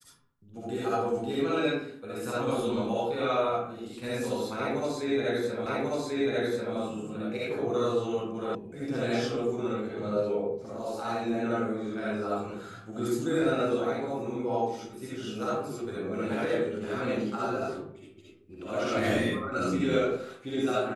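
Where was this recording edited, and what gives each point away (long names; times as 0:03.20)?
0:05.66: the same again, the last 1.09 s
0:08.55: cut off before it has died away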